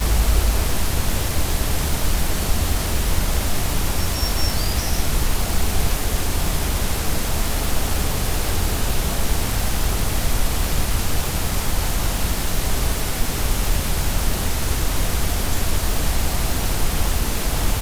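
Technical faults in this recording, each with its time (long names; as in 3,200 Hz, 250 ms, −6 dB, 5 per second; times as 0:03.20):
surface crackle 480 per second −23 dBFS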